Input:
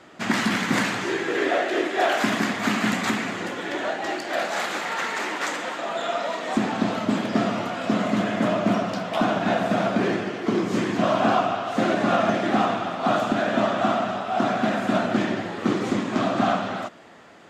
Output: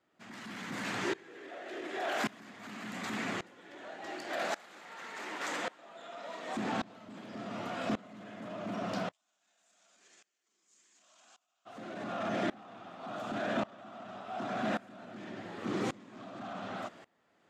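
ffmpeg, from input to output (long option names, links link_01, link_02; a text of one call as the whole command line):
ffmpeg -i in.wav -filter_complex "[0:a]alimiter=limit=-18dB:level=0:latency=1:release=22,asplit=3[link_01][link_02][link_03];[link_01]afade=type=out:start_time=9.1:duration=0.02[link_04];[link_02]bandpass=frequency=7200:width_type=q:width=4.5:csg=0,afade=type=in:start_time=9.1:duration=0.02,afade=type=out:start_time=11.65:duration=0.02[link_05];[link_03]afade=type=in:start_time=11.65:duration=0.02[link_06];[link_04][link_05][link_06]amix=inputs=3:normalize=0,aeval=exprs='val(0)*pow(10,-24*if(lt(mod(-0.88*n/s,1),2*abs(-0.88)/1000),1-mod(-0.88*n/s,1)/(2*abs(-0.88)/1000),(mod(-0.88*n/s,1)-2*abs(-0.88)/1000)/(1-2*abs(-0.88)/1000))/20)':channel_layout=same,volume=-4.5dB" out.wav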